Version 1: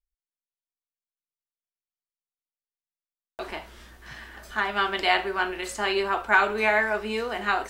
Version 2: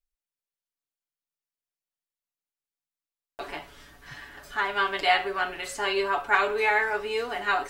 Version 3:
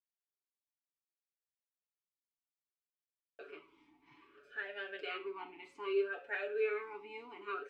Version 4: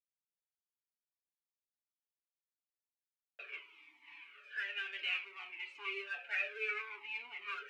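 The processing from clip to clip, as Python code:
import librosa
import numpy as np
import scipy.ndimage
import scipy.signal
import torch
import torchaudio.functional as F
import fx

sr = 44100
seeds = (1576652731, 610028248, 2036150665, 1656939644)

y1 = x + 0.84 * np.pad(x, (int(7.0 * sr / 1000.0), 0))[:len(x)]
y1 = y1 * 10.0 ** (-3.0 / 20.0)
y2 = fx.vowel_sweep(y1, sr, vowels='e-u', hz=0.63)
y2 = y2 * 10.0 ** (-2.5 / 20.0)
y3 = fx.law_mismatch(y2, sr, coded='mu')
y3 = fx.bandpass_q(y3, sr, hz=2500.0, q=3.1)
y3 = fx.comb_cascade(y3, sr, direction='falling', hz=1.0)
y3 = y3 * 10.0 ** (12.0 / 20.0)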